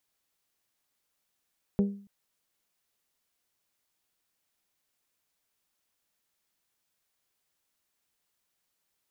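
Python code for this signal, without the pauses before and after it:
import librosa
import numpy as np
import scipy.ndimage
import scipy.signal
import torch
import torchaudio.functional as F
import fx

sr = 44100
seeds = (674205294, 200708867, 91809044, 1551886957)

y = fx.strike_glass(sr, length_s=0.28, level_db=-19.0, body='bell', hz=200.0, decay_s=0.47, tilt_db=7.5, modes=5)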